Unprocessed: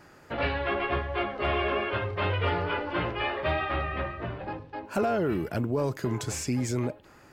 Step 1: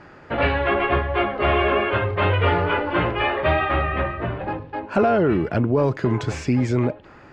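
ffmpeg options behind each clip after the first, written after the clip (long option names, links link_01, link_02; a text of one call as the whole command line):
ffmpeg -i in.wav -af "lowpass=3100,volume=8.5dB" out.wav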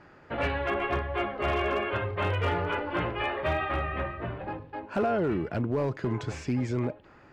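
ffmpeg -i in.wav -af "asoftclip=type=hard:threshold=-12dB,volume=-8.5dB" out.wav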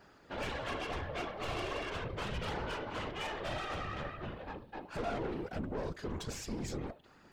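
ffmpeg -i in.wav -af "aexciter=amount=4:drive=2.6:freq=3200,aeval=exprs='(tanh(35.5*val(0)+0.6)-tanh(0.6))/35.5':channel_layout=same,afftfilt=real='hypot(re,im)*cos(2*PI*random(0))':imag='hypot(re,im)*sin(2*PI*random(1))':win_size=512:overlap=0.75,volume=2dB" out.wav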